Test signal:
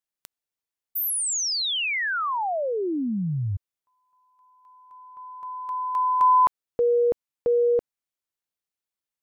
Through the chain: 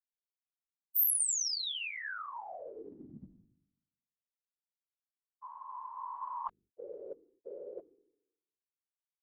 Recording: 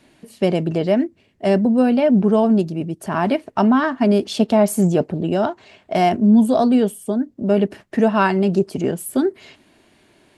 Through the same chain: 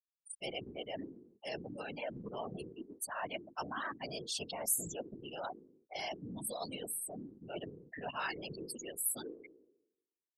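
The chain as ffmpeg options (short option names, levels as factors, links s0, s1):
-af "aderivative,afftfilt=real='re*gte(hypot(re,im),0.0178)':imag='im*gte(hypot(re,im),0.0178)':win_size=1024:overlap=0.75,bandreject=f=50:t=h:w=6,bandreject=f=100:t=h:w=6,bandreject=f=150:t=h:w=6,bandreject=f=200:t=h:w=6,bandreject=f=250:t=h:w=6,bandreject=f=300:t=h:w=6,bandreject=f=350:t=h:w=6,bandreject=f=400:t=h:w=6,areverse,acompressor=mode=upward:threshold=0.0158:ratio=2.5:attack=71:release=30:knee=2.83:detection=peak,areverse,asubboost=boost=2.5:cutoff=120,afftfilt=real='hypot(re,im)*cos(2*PI*random(0))':imag='hypot(re,im)*sin(2*PI*random(1))':win_size=512:overlap=0.75"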